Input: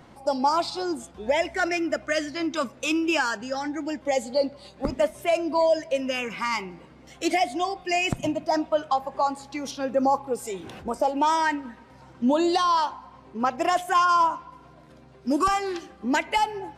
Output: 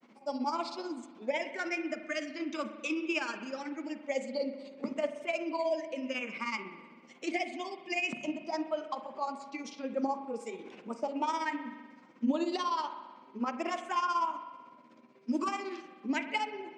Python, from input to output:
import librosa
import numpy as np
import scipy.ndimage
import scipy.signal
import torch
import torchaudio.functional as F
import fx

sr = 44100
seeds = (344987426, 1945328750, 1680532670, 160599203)

y = fx.granulator(x, sr, seeds[0], grain_ms=92.0, per_s=16.0, spray_ms=13.0, spread_st=0)
y = fx.cabinet(y, sr, low_hz=210.0, low_slope=24, high_hz=7400.0, hz=(230.0, 740.0, 1600.0, 2300.0, 3800.0), db=(8, -5, -4, 7, -3))
y = fx.rev_spring(y, sr, rt60_s=1.4, pass_ms=(41,), chirp_ms=35, drr_db=9.0)
y = F.gain(torch.from_numpy(y), -7.5).numpy()